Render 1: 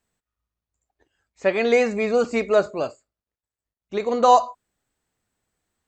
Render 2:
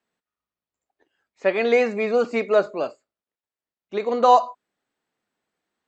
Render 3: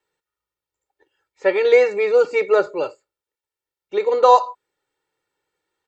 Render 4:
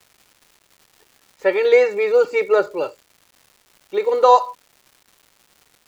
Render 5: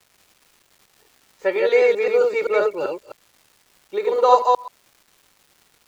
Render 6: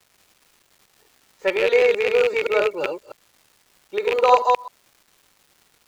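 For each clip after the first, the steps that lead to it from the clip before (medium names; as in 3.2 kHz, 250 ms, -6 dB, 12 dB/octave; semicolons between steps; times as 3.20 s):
three-band isolator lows -21 dB, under 170 Hz, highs -13 dB, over 5.1 kHz
comb 2.2 ms, depth 96%
crackle 420 per s -40 dBFS
chunks repeated in reverse 130 ms, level -2 dB; trim -3.5 dB
rattle on loud lows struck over -34 dBFS, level -11 dBFS; trim -1 dB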